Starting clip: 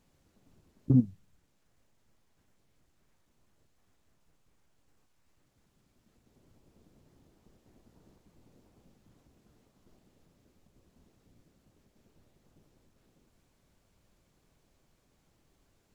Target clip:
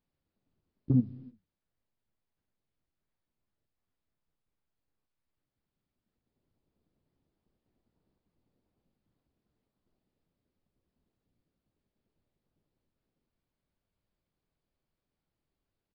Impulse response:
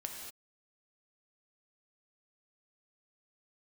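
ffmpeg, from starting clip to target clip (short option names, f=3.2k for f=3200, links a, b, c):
-filter_complex "[0:a]agate=range=-14dB:threshold=-56dB:ratio=16:detection=peak,asplit=2[a][b];[1:a]atrim=start_sample=2205,asetrate=32634,aresample=44100[c];[b][c]afir=irnorm=-1:irlink=0,volume=-15.5dB[d];[a][d]amix=inputs=2:normalize=0,aresample=11025,aresample=44100,volume=-3.5dB"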